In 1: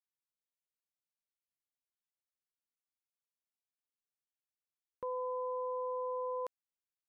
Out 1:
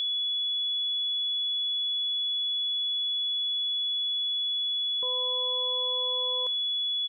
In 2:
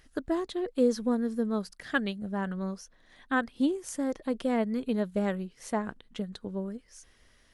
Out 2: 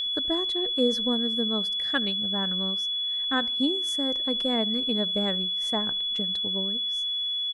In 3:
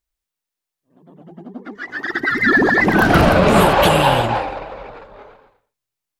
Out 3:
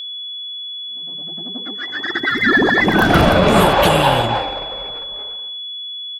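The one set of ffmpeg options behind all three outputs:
-filter_complex "[0:a]asplit=2[a][b];[b]adelay=76,lowpass=f=1.3k:p=1,volume=-23.5dB,asplit=2[c][d];[d]adelay=76,lowpass=f=1.3k:p=1,volume=0.41,asplit=2[e][f];[f]adelay=76,lowpass=f=1.3k:p=1,volume=0.41[g];[a][c][e][g]amix=inputs=4:normalize=0,aeval=exprs='val(0)+0.0501*sin(2*PI*3400*n/s)':c=same"

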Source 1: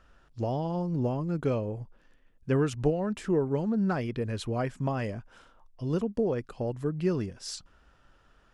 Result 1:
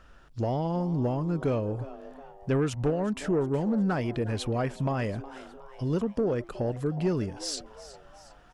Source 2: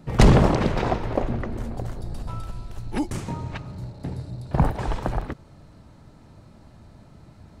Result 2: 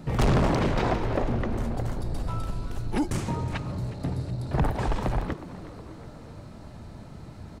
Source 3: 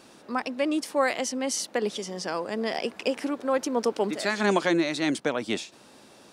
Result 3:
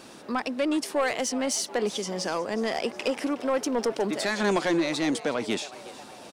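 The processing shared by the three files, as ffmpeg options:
-filter_complex "[0:a]asplit=2[a][b];[b]acompressor=threshold=-35dB:ratio=6,volume=-1.5dB[c];[a][c]amix=inputs=2:normalize=0,asoftclip=type=tanh:threshold=-18dB,asplit=5[d][e][f][g][h];[e]adelay=365,afreqshift=140,volume=-17dB[i];[f]adelay=730,afreqshift=280,volume=-22.8dB[j];[g]adelay=1095,afreqshift=420,volume=-28.7dB[k];[h]adelay=1460,afreqshift=560,volume=-34.5dB[l];[d][i][j][k][l]amix=inputs=5:normalize=0"

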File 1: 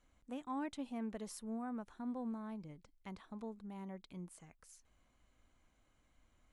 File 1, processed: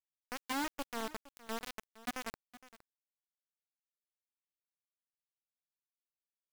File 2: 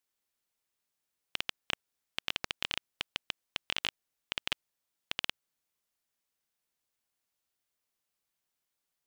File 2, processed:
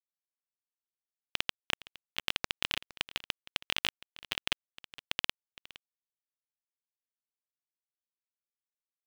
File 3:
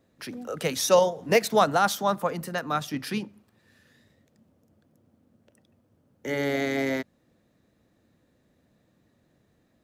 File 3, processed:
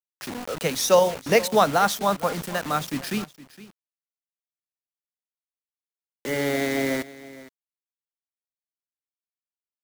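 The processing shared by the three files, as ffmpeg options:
-af "acrusher=bits=5:mix=0:aa=0.000001,aecho=1:1:464:0.126,volume=2dB"

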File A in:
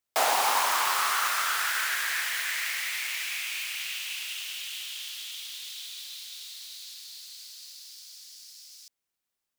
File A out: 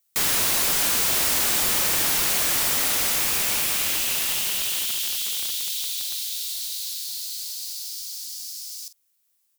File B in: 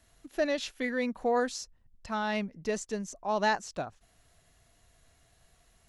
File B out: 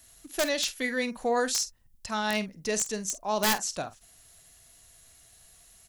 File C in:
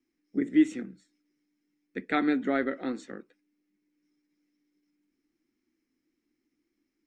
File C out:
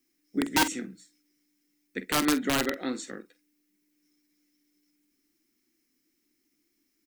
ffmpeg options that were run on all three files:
-filter_complex "[0:a]crystalizer=i=4:c=0,aeval=exprs='(mod(7.08*val(0)+1,2)-1)/7.08':c=same,asplit=2[a][b];[b]adelay=47,volume=-13.5dB[c];[a][c]amix=inputs=2:normalize=0"

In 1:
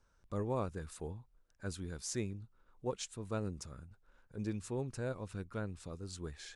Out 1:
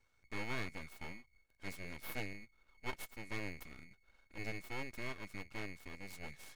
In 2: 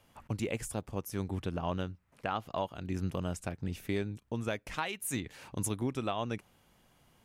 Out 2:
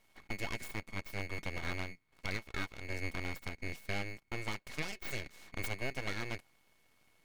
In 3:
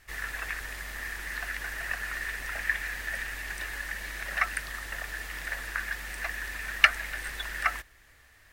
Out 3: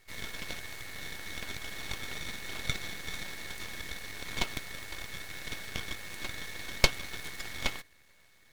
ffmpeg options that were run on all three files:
-af "aeval=exprs='val(0)*sin(2*PI*1100*n/s)':c=same,aeval=exprs='abs(val(0))':c=same"

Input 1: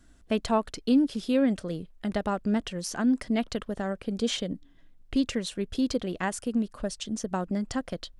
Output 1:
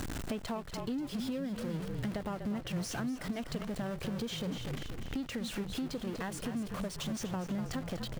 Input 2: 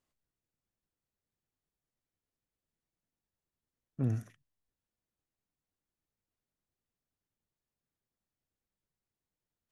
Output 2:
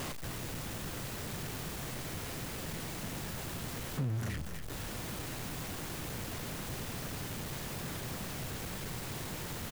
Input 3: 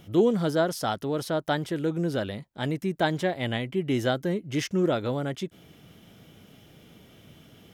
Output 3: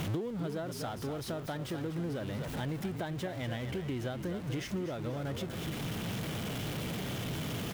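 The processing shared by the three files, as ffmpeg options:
-filter_complex "[0:a]aeval=exprs='val(0)+0.5*0.0398*sgn(val(0))':c=same,bass=f=250:g=-4,treble=f=4k:g=-4,asplit=2[a][b];[b]asplit=5[c][d][e][f][g];[c]adelay=244,afreqshift=-39,volume=-9.5dB[h];[d]adelay=488,afreqshift=-78,volume=-17dB[i];[e]adelay=732,afreqshift=-117,volume=-24.6dB[j];[f]adelay=976,afreqshift=-156,volume=-32.1dB[k];[g]adelay=1220,afreqshift=-195,volume=-39.6dB[l];[h][i][j][k][l]amix=inputs=5:normalize=0[m];[a][m]amix=inputs=2:normalize=0,acompressor=threshold=-35dB:ratio=6,equalizer=f=130:w=0.97:g=7.5,volume=-2dB"

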